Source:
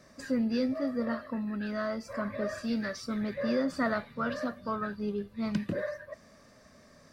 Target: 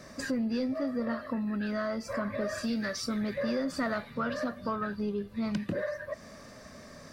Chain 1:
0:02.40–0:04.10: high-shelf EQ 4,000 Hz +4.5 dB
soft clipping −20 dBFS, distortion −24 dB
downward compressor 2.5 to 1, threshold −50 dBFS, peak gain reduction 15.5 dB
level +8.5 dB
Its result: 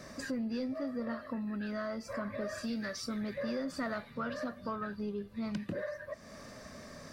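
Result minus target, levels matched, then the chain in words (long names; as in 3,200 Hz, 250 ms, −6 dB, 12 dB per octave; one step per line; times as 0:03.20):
downward compressor: peak gain reduction +5 dB
0:02.40–0:04.10: high-shelf EQ 4,000 Hz +4.5 dB
soft clipping −20 dBFS, distortion −24 dB
downward compressor 2.5 to 1, threshold −41.5 dBFS, peak gain reduction 10.5 dB
level +8.5 dB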